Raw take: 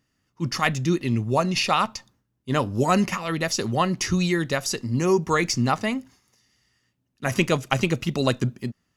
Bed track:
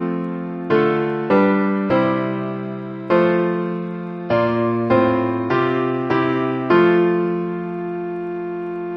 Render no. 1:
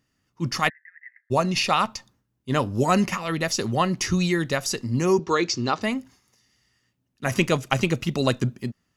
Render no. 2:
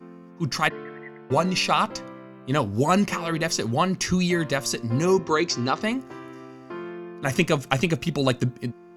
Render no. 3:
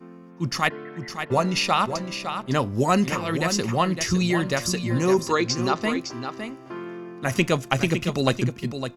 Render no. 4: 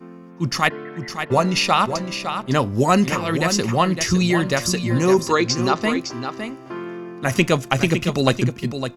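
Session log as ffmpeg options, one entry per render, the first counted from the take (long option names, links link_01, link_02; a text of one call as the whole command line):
ffmpeg -i in.wav -filter_complex "[0:a]asplit=3[link_01][link_02][link_03];[link_01]afade=type=out:start_time=0.68:duration=0.02[link_04];[link_02]asuperpass=centerf=1800:order=8:qfactor=4,afade=type=in:start_time=0.68:duration=0.02,afade=type=out:start_time=1.3:duration=0.02[link_05];[link_03]afade=type=in:start_time=1.3:duration=0.02[link_06];[link_04][link_05][link_06]amix=inputs=3:normalize=0,asettb=1/sr,asplit=3[link_07][link_08][link_09];[link_07]atrim=end=5.194[link_10];[link_08]atrim=start=5.19:end=5.82,asetpts=PTS-STARTPTS,afade=type=in:duration=0.004:curve=qsin,afade=type=out:start_time=0.626:duration=0.004:curve=qsin,highpass=100,equalizer=frequency=140:width_type=q:width=4:gain=-9,equalizer=frequency=210:width_type=q:width=4:gain=-10,equalizer=frequency=370:width_type=q:width=4:gain=6,equalizer=frequency=720:width_type=q:width=4:gain=-4,equalizer=frequency=2000:width_type=q:width=4:gain=-6,equalizer=frequency=4000:width_type=q:width=4:gain=5,lowpass=frequency=6300:width=0.5412,lowpass=frequency=6300:width=1.3066[link_11];[link_09]atrim=start=5.816[link_12];[link_10][link_11]acrossfade=duration=0.004:curve1=hsin:curve2=qsin[link_13];[link_13][link_12]acrossfade=duration=0.004:curve1=qsin:curve2=hsin" out.wav
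ffmpeg -i in.wav -i bed.wav -filter_complex "[1:a]volume=-22dB[link_01];[0:a][link_01]amix=inputs=2:normalize=0" out.wav
ffmpeg -i in.wav -af "aecho=1:1:559:0.376" out.wav
ffmpeg -i in.wav -af "volume=4dB,alimiter=limit=-1dB:level=0:latency=1" out.wav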